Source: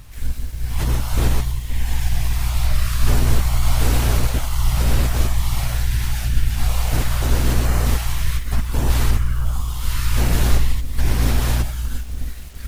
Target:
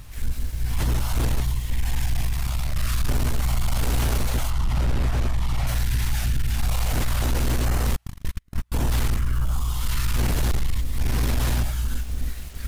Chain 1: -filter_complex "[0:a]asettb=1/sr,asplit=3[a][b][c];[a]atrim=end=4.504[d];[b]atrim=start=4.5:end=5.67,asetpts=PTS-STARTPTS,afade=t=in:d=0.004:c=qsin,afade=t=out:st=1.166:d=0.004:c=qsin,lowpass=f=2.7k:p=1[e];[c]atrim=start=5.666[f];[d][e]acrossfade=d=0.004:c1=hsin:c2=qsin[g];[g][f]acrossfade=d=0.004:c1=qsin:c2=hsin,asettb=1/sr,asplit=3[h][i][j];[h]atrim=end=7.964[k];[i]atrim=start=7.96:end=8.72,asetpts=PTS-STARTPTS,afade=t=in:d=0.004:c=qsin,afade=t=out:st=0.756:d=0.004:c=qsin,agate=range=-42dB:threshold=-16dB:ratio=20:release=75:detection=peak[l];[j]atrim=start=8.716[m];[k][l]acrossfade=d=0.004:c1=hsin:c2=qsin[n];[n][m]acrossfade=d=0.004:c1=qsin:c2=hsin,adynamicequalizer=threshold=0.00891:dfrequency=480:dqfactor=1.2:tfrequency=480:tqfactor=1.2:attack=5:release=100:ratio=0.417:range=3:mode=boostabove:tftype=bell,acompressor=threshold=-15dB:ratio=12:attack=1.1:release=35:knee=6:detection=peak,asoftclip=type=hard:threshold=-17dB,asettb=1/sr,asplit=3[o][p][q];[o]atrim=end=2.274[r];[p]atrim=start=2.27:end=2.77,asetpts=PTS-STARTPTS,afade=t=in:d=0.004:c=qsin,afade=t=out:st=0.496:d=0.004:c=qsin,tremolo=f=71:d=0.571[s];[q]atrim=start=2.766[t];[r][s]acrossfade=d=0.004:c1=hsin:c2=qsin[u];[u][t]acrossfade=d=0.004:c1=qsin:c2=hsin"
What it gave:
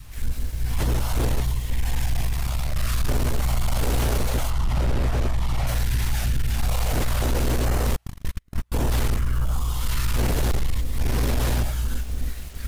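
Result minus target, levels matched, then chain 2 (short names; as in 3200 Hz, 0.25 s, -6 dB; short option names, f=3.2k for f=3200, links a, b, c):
500 Hz band +4.5 dB
-filter_complex "[0:a]asettb=1/sr,asplit=3[a][b][c];[a]atrim=end=4.504[d];[b]atrim=start=4.5:end=5.67,asetpts=PTS-STARTPTS,afade=t=in:d=0.004:c=qsin,afade=t=out:st=1.166:d=0.004:c=qsin,lowpass=f=2.7k:p=1[e];[c]atrim=start=5.666[f];[d][e]acrossfade=d=0.004:c1=hsin:c2=qsin[g];[g][f]acrossfade=d=0.004:c1=qsin:c2=hsin,asettb=1/sr,asplit=3[h][i][j];[h]atrim=end=7.964[k];[i]atrim=start=7.96:end=8.72,asetpts=PTS-STARTPTS,afade=t=in:d=0.004:c=qsin,afade=t=out:st=0.756:d=0.004:c=qsin,agate=range=-42dB:threshold=-16dB:ratio=20:release=75:detection=peak[l];[j]atrim=start=8.716[m];[k][l]acrossfade=d=0.004:c1=hsin:c2=qsin[n];[n][m]acrossfade=d=0.004:c1=qsin:c2=hsin,acompressor=threshold=-15dB:ratio=12:attack=1.1:release=35:knee=6:detection=peak,asoftclip=type=hard:threshold=-17dB,asettb=1/sr,asplit=3[o][p][q];[o]atrim=end=2.274[r];[p]atrim=start=2.27:end=2.77,asetpts=PTS-STARTPTS,afade=t=in:d=0.004:c=qsin,afade=t=out:st=0.496:d=0.004:c=qsin,tremolo=f=71:d=0.571[s];[q]atrim=start=2.766[t];[r][s]acrossfade=d=0.004:c1=hsin:c2=qsin[u];[u][t]acrossfade=d=0.004:c1=qsin:c2=hsin"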